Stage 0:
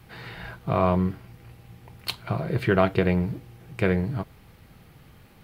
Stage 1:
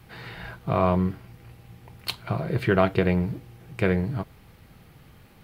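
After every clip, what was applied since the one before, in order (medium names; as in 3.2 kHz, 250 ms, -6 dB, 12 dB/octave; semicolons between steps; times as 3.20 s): no audible change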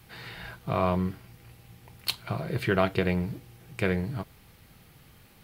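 treble shelf 2.7 kHz +8.5 dB; trim -4.5 dB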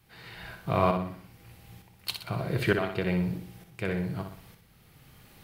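tremolo saw up 1.1 Hz, depth 75%; on a send: flutter echo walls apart 10.5 m, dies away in 0.54 s; on the sum: trim +2 dB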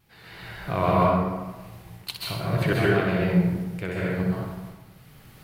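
vibrato 3.3 Hz 63 cents; plate-style reverb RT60 1.2 s, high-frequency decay 0.5×, pre-delay 120 ms, DRR -5 dB; trim -1 dB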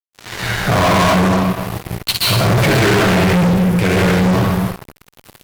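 flange 0.37 Hz, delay 9.2 ms, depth 1.2 ms, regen -40%; fuzz box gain 39 dB, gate -47 dBFS; trim +2 dB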